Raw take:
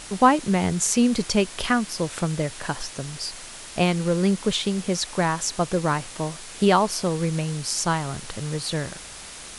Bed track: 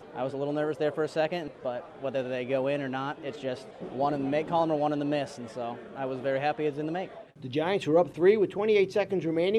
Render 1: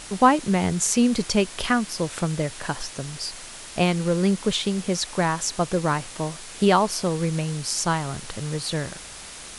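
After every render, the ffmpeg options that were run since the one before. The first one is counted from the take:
-af anull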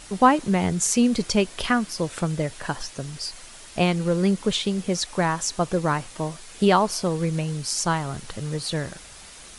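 -af "afftdn=nr=6:nf=-40"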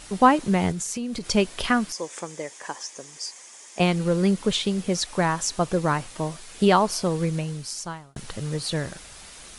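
-filter_complex "[0:a]asettb=1/sr,asplit=3[s0][s1][s2];[s0]atrim=end=0.714[s3];[s1]atrim=start=0.71:end=1.3,asetpts=PTS-STARTPTS,afade=t=in:d=0.004:c=qsin,afade=t=out:st=0.586:d=0.004:c=qsin,acompressor=threshold=0.0447:ratio=6:attack=3.2:release=140:knee=1:detection=peak[s4];[s2]atrim=start=1.296[s5];[s3][s4]acrossfade=d=0.004:c1=hsin:c2=qsin[s6];[s6][s5]acrossfade=d=0.004:c1=qsin:c2=hsin,asettb=1/sr,asplit=3[s7][s8][s9];[s7]atrim=end=1.924[s10];[s8]atrim=start=1.92:end=3.8,asetpts=PTS-STARTPTS,afade=t=in:d=0.004:c=qsin,afade=t=out:st=1.876:d=0.004:c=qsin,highpass=470,equalizer=f=660:t=q:w=4:g=-7,equalizer=f=1400:t=q:w=4:g=-10,equalizer=f=2800:t=q:w=4:g=-7,equalizer=f=4100:t=q:w=4:g=-10,equalizer=f=6600:t=q:w=4:g=6,lowpass=f=9200:w=0.5412,lowpass=f=9200:w=1.3066[s11];[s9]atrim=start=3.796[s12];[s10][s11]acrossfade=d=0.004:c1=hsin:c2=qsin[s13];[s13][s12]acrossfade=d=0.004:c1=qsin:c2=hsin,asplit=2[s14][s15];[s14]atrim=end=8.16,asetpts=PTS-STARTPTS,afade=t=out:st=7.23:d=0.93[s16];[s15]atrim=start=8.16,asetpts=PTS-STARTPTS,afade=t=in:d=0.004:c=hsin[s17];[s16][s17]concat=n=2:v=0:a=1"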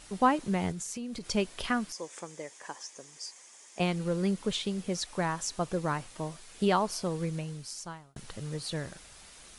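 -af "volume=0.398"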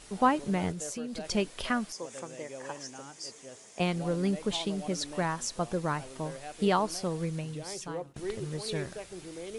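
-filter_complex "[1:a]volume=0.168[s0];[0:a][s0]amix=inputs=2:normalize=0"

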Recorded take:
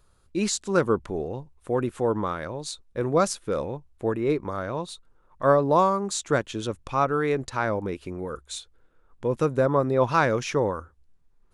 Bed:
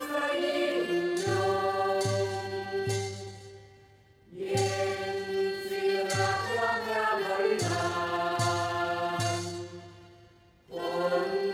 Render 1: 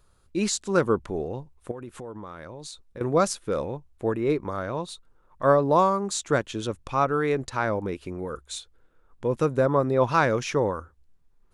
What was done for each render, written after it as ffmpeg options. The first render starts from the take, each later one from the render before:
-filter_complex "[0:a]asettb=1/sr,asplit=3[s0][s1][s2];[s0]atrim=end=1.714[s3];[s1]atrim=start=1.71:end=3.01,asetpts=PTS-STARTPTS,afade=t=in:d=0.004:c=qsin,afade=t=out:st=1.296:d=0.004:c=qsin,acompressor=threshold=0.0158:ratio=5:attack=3.2:release=140:knee=1:detection=peak[s4];[s2]atrim=start=3.006[s5];[s3][s4]acrossfade=d=0.004:c1=hsin:c2=qsin[s6];[s6][s5]acrossfade=d=0.004:c1=qsin:c2=hsin"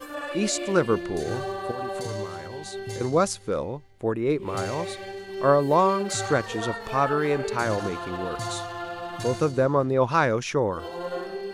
-filter_complex "[1:a]volume=0.631[s0];[0:a][s0]amix=inputs=2:normalize=0"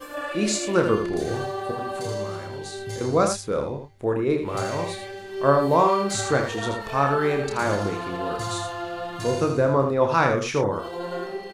-filter_complex "[0:a]asplit=2[s0][s1];[s1]adelay=29,volume=0.473[s2];[s0][s2]amix=inputs=2:normalize=0,aecho=1:1:80:0.447"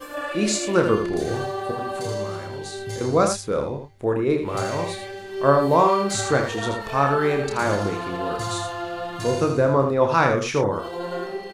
-af "volume=1.19"

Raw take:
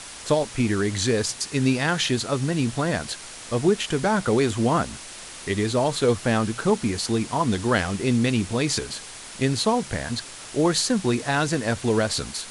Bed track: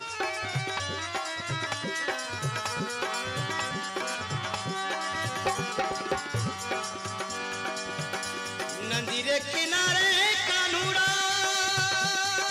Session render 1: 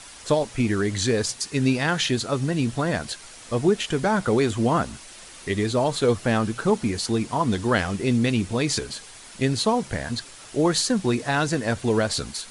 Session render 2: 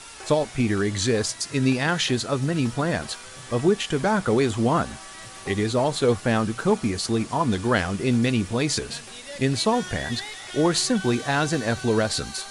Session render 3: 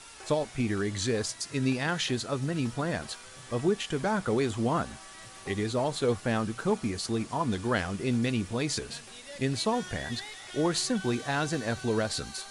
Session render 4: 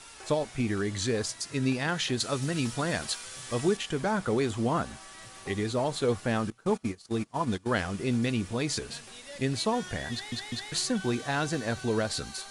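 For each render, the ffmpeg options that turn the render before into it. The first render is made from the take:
-af "afftdn=nr=6:nf=-40"
-filter_complex "[1:a]volume=0.237[s0];[0:a][s0]amix=inputs=2:normalize=0"
-af "volume=0.473"
-filter_complex "[0:a]asettb=1/sr,asplit=3[s0][s1][s2];[s0]atrim=end=2.204[s3];[s1]atrim=start=2.2:end=3.77,asetpts=PTS-STARTPTS,afade=t=in:d=0.004:c=qsin,afade=t=out:st=1.566:d=0.004:c=qsin,highshelf=f=2200:g=8.5[s4];[s2]atrim=start=3.766[s5];[s3][s4]acrossfade=d=0.004:c1=hsin:c2=qsin[s6];[s6][s5]acrossfade=d=0.004:c1=qsin:c2=hsin,asettb=1/sr,asplit=3[s7][s8][s9];[s7]atrim=end=6.504[s10];[s8]atrim=start=6.5:end=7.8,asetpts=PTS-STARTPTS,afade=t=in:d=0.004:c=qsin,afade=t=out:st=1.296:d=0.004:c=qsin,agate=range=0.0891:threshold=0.0251:ratio=16:release=100:detection=peak[s11];[s9]atrim=start=7.796[s12];[s10][s11]acrossfade=d=0.004:c1=hsin:c2=qsin[s13];[s13][s12]acrossfade=d=0.004:c1=qsin:c2=hsin,asplit=4[s14][s15][s16][s17];[s14]atrim=end=10.322[s18];[s15]atrim=start=10.118:end=10.322[s19];[s16]atrim=start=10.118:end=10.322[s20];[s17]atrim=start=10.718[s21];[s18][s19]acrossfade=d=0.004:c1=hsin:c2=hsin[s22];[s22][s20]acrossfade=d=0.004:c1=hsin:c2=hsin[s23];[s23][s21]acrossfade=d=0.004:c1=hsin:c2=hsin"

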